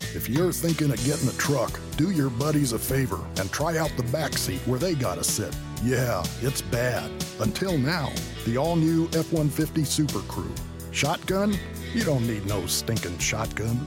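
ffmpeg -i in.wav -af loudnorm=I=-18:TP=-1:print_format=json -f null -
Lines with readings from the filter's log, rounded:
"input_i" : "-26.0",
"input_tp" : "-11.6",
"input_lra" : "1.0",
"input_thresh" : "-36.0",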